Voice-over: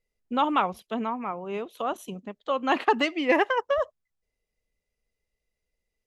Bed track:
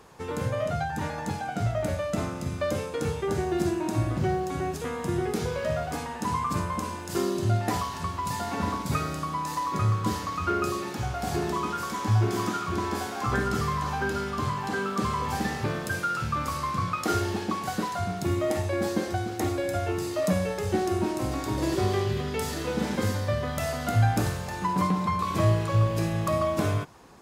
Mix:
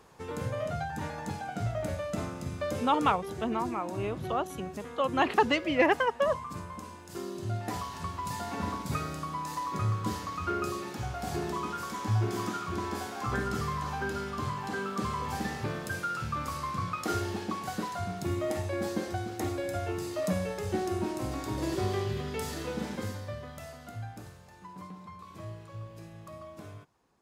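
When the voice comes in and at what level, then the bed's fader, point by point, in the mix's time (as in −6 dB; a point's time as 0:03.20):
2.50 s, −2.0 dB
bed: 0:02.92 −5 dB
0:03.24 −11.5 dB
0:07.21 −11.5 dB
0:08.03 −5 dB
0:22.62 −5 dB
0:24.18 −20 dB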